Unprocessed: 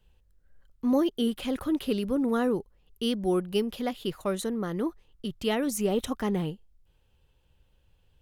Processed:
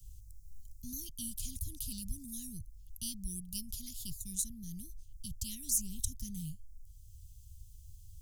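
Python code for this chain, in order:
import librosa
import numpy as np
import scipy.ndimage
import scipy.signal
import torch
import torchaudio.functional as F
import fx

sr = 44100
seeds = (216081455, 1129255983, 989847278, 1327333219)

y = scipy.signal.sosfilt(scipy.signal.ellip(3, 1.0, 70, [100.0, 6100.0], 'bandstop', fs=sr, output='sos'), x)
y = fx.band_squash(y, sr, depth_pct=40)
y = y * 10.0 ** (9.5 / 20.0)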